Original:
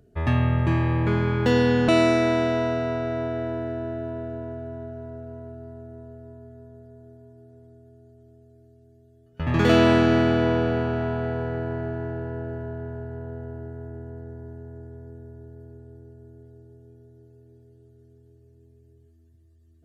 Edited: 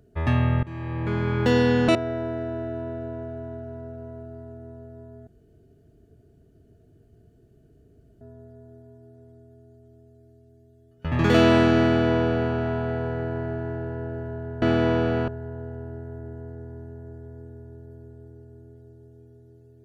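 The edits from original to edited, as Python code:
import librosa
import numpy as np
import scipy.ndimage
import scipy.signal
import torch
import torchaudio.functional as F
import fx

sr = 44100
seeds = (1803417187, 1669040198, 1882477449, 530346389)

y = fx.edit(x, sr, fx.fade_in_from(start_s=0.63, length_s=0.78, floor_db=-21.5),
    fx.cut(start_s=1.95, length_s=1.29),
    fx.insert_room_tone(at_s=6.56, length_s=2.94),
    fx.duplicate(start_s=10.22, length_s=0.66, to_s=12.97), tone=tone)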